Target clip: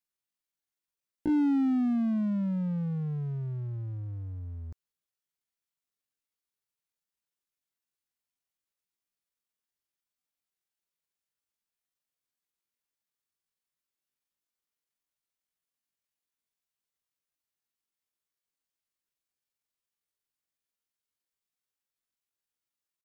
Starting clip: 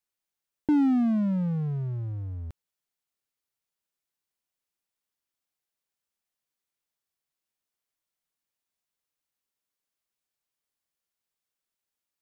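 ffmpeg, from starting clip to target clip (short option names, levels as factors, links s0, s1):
-af "equalizer=f=700:w=1.5:g=-3,atempo=0.53,volume=0.668"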